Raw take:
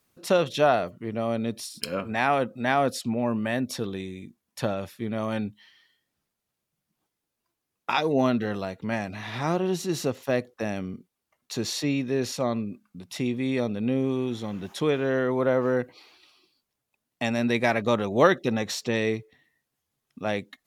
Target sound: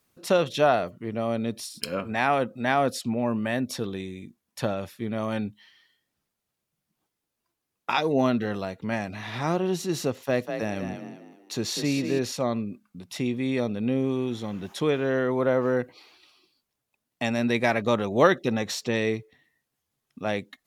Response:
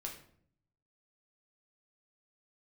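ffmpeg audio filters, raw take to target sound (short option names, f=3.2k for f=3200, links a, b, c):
-filter_complex "[0:a]asettb=1/sr,asplit=3[a][b][c];[a]atrim=end=10.124[d];[b]atrim=start=10.12:end=12.19,asetpts=PTS-STARTPTS,afade=t=in:d=0.004:c=qsin,afade=t=out:st=2.066:d=0.004:c=qsin,asplit=5[e][f][g][h][i];[f]adelay=196,afreqshift=37,volume=-7dB[j];[g]adelay=392,afreqshift=74,volume=-15.9dB[k];[h]adelay=588,afreqshift=111,volume=-24.7dB[l];[i]adelay=784,afreqshift=148,volume=-33.6dB[m];[e][j][k][l][m]amix=inputs=5:normalize=0,atrim=end_sample=91287[n];[c]atrim=start=12.186[o];[d][n]acrossfade=d=0.004:c1=hsin:c2=qsin[p];[p][o]acrossfade=d=0.004:c1=qsin:c2=hsin"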